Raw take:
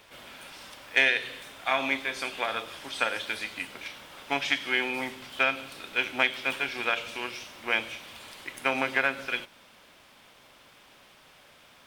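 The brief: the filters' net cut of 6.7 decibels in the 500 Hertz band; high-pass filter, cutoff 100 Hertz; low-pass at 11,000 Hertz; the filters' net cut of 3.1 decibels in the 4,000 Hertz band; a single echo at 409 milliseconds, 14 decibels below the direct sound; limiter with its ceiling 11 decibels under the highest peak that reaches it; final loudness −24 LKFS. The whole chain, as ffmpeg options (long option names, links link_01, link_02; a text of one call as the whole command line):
ffmpeg -i in.wav -af "highpass=100,lowpass=11000,equalizer=frequency=500:width_type=o:gain=-9,equalizer=frequency=4000:width_type=o:gain=-4,alimiter=limit=-21dB:level=0:latency=1,aecho=1:1:409:0.2,volume=10.5dB" out.wav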